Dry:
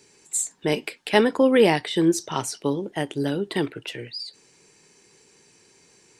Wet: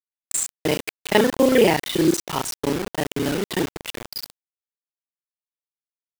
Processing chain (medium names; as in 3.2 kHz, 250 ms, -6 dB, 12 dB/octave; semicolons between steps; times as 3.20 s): time reversed locally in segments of 31 ms; bit crusher 5-bit; trim +1.5 dB